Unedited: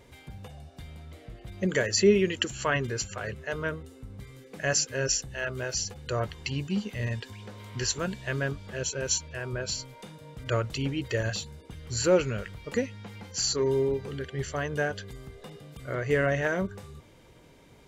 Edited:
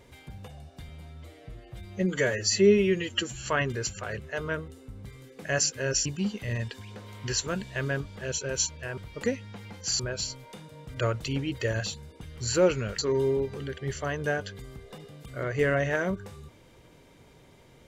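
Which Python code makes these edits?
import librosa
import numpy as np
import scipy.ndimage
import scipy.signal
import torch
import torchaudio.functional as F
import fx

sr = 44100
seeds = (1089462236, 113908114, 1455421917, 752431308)

y = fx.edit(x, sr, fx.stretch_span(start_s=0.89, length_s=1.71, factor=1.5),
    fx.cut(start_s=5.2, length_s=1.37),
    fx.move(start_s=12.48, length_s=1.02, to_s=9.49), tone=tone)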